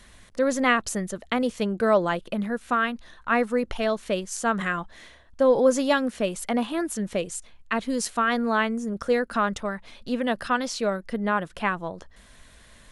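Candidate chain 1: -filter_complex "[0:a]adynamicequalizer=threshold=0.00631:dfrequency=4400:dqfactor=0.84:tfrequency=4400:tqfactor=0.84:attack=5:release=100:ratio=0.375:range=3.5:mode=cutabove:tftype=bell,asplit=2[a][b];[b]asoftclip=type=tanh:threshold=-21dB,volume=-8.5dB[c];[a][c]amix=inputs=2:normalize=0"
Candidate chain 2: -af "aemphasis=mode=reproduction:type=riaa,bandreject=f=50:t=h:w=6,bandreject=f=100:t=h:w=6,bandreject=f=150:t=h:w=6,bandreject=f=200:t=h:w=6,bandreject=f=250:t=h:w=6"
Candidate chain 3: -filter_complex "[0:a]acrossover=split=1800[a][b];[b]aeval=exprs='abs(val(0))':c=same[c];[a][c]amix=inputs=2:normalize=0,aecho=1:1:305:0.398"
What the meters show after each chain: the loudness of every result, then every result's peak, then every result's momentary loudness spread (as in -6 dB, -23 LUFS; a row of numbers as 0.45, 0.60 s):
-24.0, -22.5, -26.0 LUFS; -7.5, -5.0, -7.5 dBFS; 10, 9, 10 LU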